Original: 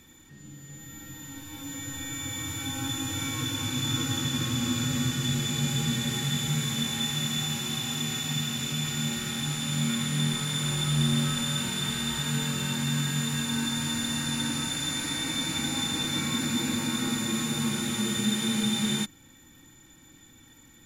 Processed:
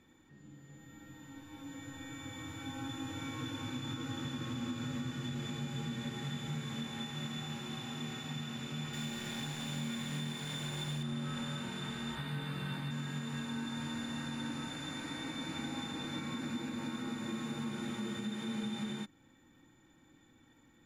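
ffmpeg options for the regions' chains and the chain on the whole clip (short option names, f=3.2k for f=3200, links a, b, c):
-filter_complex "[0:a]asettb=1/sr,asplit=3[a][b][c];[a]atrim=end=8.934[d];[b]atrim=start=8.93:end=11.03,asetpts=PTS-STARTPTS,afade=t=in:d=0.004:c=qsin,afade=t=out:st=2.096:d=0.004:c=qsin,highshelf=f=2.3k:g=6.5,bandreject=f=1.3k:w=9,acrusher=bits=6:dc=4:mix=0:aa=0.000001[e];[c]atrim=start=11.026[f];[d][e]acrossfade=d=0.004:c1=hsin:c2=qsin[g];[g][f]acrossfade=d=0.004:c1=qsin:c2=hsin,asettb=1/sr,asplit=3[h][i][j];[h]atrim=end=12.154[k];[i]atrim=start=12.15:end=12.91,asetpts=PTS-STARTPTS,afade=t=in:d=0.004:c=qsin,afade=t=out:st=0.756:d=0.004:c=qsin,equalizer=f=5.7k:t=o:w=0.26:g=-11.5,bandreject=f=6.9k:w=8.1,asplit=2[l][m];[m]adelay=15,volume=-4dB[n];[l][n]amix=inputs=2:normalize=0,atrim=end_sample=33516[o];[j]atrim=start=12.906[p];[k][o]acrossfade=d=0.004:c1=hsin:c2=qsin[q];[q][p]acrossfade=d=0.004:c1=qsin:c2=hsin,lowpass=f=1.1k:p=1,lowshelf=f=170:g=-9.5,alimiter=level_in=2dB:limit=-24dB:level=0:latency=1:release=188,volume=-2dB,volume=-3.5dB"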